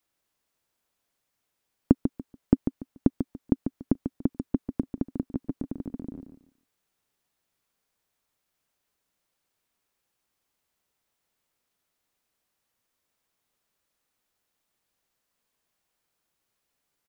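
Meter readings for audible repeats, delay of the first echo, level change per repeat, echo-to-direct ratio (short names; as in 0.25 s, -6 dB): 3, 0.144 s, -13.0 dB, -8.0 dB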